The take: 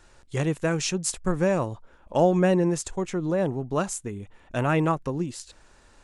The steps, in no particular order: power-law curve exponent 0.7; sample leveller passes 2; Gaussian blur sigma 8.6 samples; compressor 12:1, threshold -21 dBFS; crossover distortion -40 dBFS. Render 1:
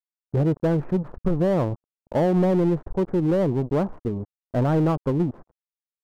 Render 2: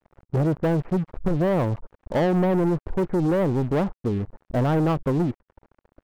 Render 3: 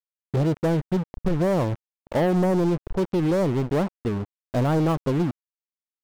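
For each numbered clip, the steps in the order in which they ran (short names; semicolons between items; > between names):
crossover distortion > compressor > sample leveller > Gaussian blur > power-law curve; Gaussian blur > power-law curve > crossover distortion > compressor > sample leveller; Gaussian blur > crossover distortion > power-law curve > compressor > sample leveller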